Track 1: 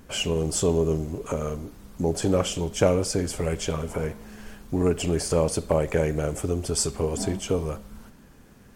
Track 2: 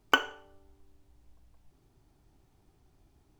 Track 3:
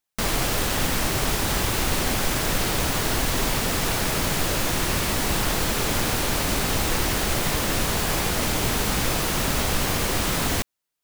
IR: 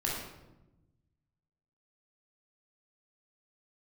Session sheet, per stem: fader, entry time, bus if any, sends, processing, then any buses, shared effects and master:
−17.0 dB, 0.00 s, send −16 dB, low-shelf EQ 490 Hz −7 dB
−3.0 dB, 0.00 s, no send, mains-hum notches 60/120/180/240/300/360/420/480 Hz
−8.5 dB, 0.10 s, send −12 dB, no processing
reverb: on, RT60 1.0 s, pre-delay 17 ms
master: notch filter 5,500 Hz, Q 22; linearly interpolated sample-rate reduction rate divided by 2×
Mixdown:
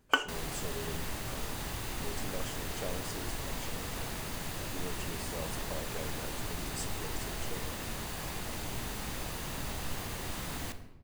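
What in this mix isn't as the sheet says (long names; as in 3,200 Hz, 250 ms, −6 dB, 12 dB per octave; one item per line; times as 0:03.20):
stem 3 −8.5 dB → −17.5 dB
master: missing linearly interpolated sample-rate reduction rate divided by 2×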